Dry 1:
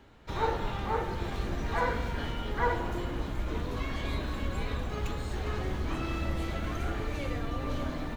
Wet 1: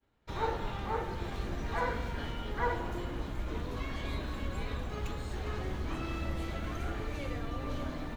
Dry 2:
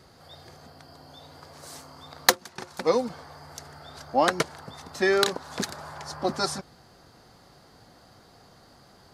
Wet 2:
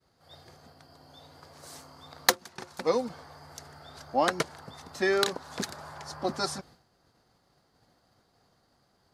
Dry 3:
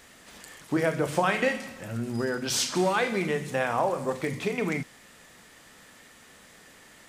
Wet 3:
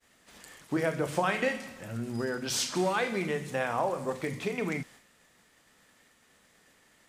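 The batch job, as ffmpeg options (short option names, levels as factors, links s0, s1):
-af "agate=range=0.0224:threshold=0.00501:ratio=3:detection=peak,volume=0.668"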